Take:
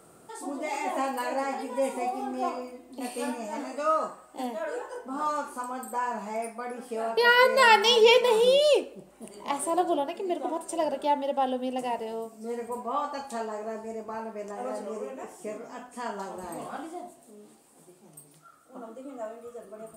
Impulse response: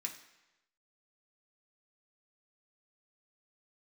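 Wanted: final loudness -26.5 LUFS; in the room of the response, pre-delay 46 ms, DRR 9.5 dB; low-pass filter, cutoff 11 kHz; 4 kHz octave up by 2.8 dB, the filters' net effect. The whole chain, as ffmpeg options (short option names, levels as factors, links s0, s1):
-filter_complex "[0:a]lowpass=11000,equalizer=f=4000:t=o:g=4,asplit=2[s0][s1];[1:a]atrim=start_sample=2205,adelay=46[s2];[s1][s2]afir=irnorm=-1:irlink=0,volume=0.376[s3];[s0][s3]amix=inputs=2:normalize=0"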